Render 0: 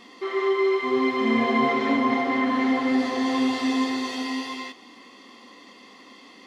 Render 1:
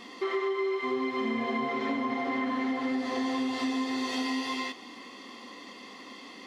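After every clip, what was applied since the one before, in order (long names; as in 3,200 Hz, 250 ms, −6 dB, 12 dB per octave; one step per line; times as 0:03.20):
downward compressor 10 to 1, threshold −29 dBFS, peak gain reduction 12.5 dB
level +2 dB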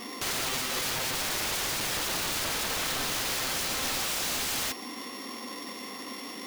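samples sorted by size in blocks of 8 samples
wrap-around overflow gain 32.5 dB
level +6.5 dB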